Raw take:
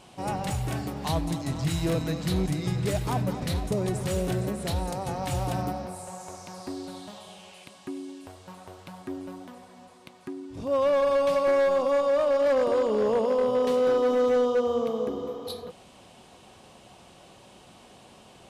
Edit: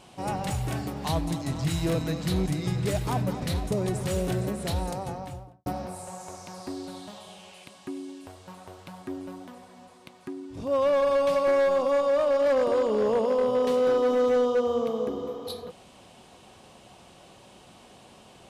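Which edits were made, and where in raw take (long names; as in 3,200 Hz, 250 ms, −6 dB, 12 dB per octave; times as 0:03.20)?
0:04.83–0:05.66: fade out and dull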